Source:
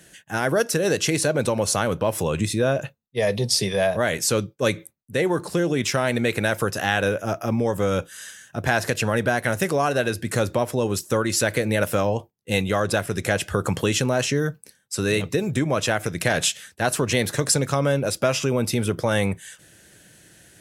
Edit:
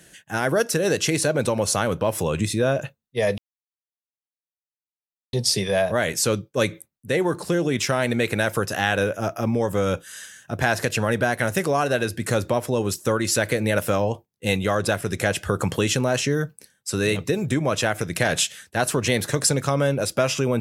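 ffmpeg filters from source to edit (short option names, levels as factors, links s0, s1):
-filter_complex "[0:a]asplit=2[s0][s1];[s0]atrim=end=3.38,asetpts=PTS-STARTPTS,afade=t=out:st=3.376:d=0.004:c=hsin,apad=pad_dur=1.95[s2];[s1]atrim=start=3.38,asetpts=PTS-STARTPTS,afade=t=in:d=0.004:c=hsin[s3];[s2][s3]concat=n=2:v=0:a=1"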